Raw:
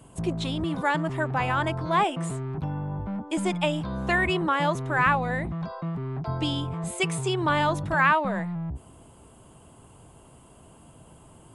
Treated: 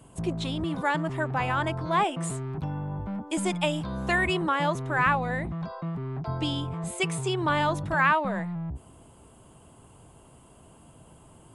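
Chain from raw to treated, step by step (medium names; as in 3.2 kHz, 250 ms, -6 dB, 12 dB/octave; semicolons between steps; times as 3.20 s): 2.21–4.50 s: treble shelf 4.4 kHz -> 6.7 kHz +7.5 dB; trim -1.5 dB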